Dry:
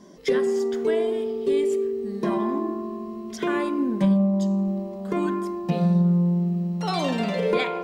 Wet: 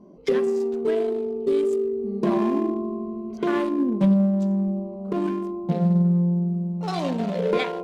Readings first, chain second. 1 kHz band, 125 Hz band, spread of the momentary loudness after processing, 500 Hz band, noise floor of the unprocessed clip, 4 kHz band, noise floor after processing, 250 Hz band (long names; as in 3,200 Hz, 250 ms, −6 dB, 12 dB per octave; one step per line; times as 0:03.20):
−1.5 dB, +0.5 dB, 8 LU, +0.5 dB, −35 dBFS, can't be measured, −35 dBFS, +1.0 dB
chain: adaptive Wiener filter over 25 samples
floating-point word with a short mantissa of 8 bits
speech leveller 2 s